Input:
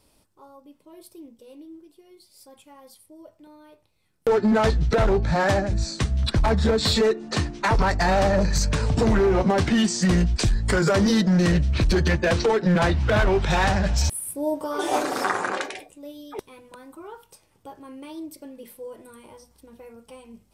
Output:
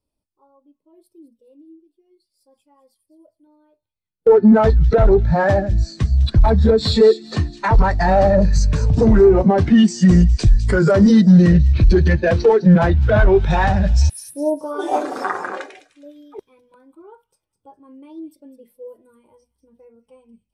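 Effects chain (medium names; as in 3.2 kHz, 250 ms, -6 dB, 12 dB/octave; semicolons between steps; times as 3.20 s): feedback echo behind a high-pass 205 ms, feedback 50%, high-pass 3 kHz, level -7.5 dB; spectral contrast expander 1.5:1; trim +4.5 dB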